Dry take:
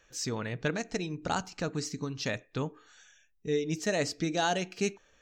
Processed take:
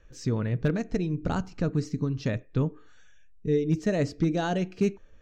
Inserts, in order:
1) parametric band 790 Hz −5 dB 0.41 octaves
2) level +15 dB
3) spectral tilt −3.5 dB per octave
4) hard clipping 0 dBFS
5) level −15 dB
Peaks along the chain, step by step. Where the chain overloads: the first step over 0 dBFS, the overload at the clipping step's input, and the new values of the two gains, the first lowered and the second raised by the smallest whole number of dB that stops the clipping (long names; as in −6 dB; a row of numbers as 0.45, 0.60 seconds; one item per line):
−16.0, −1.0, +3.5, 0.0, −15.0 dBFS
step 3, 3.5 dB
step 2 +11 dB, step 5 −11 dB